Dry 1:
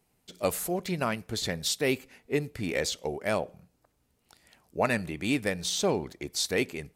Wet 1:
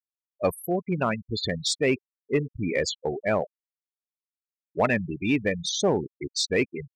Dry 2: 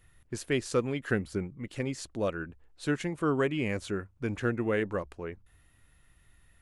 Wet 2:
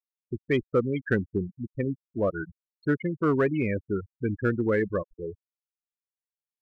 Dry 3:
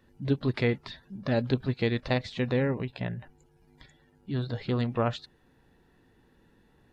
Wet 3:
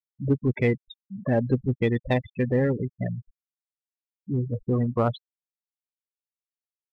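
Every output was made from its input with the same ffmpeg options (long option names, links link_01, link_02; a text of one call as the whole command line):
ffmpeg -i in.wav -filter_complex "[0:a]afftfilt=real='re*gte(hypot(re,im),0.0501)':imag='im*gte(hypot(re,im),0.0501)':win_size=1024:overlap=0.75,asplit=2[link_01][link_02];[link_02]asoftclip=type=hard:threshold=-23.5dB,volume=-7.5dB[link_03];[link_01][link_03]amix=inputs=2:normalize=0,volume=1.5dB" out.wav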